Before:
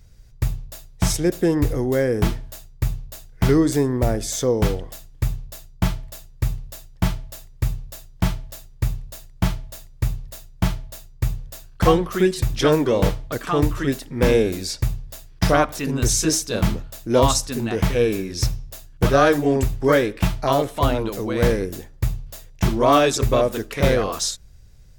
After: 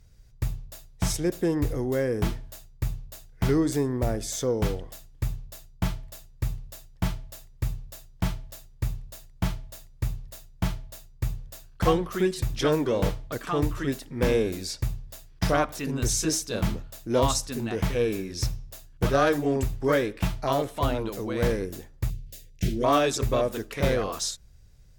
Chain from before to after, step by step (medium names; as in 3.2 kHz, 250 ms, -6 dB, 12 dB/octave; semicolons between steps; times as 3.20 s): 22.10–22.84 s: Butterworth band-stop 1 kHz, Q 0.65; Chebyshev shaper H 3 -21 dB, 5 -26 dB, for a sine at -4.5 dBFS; trim -5.5 dB